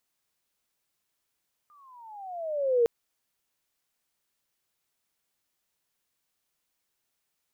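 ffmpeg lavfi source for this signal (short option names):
-f lavfi -i "aevalsrc='pow(10,(-17.5+37.5*(t/1.16-1))/20)*sin(2*PI*1220*1.16/(-17*log(2)/12)*(exp(-17*log(2)/12*t/1.16)-1))':d=1.16:s=44100"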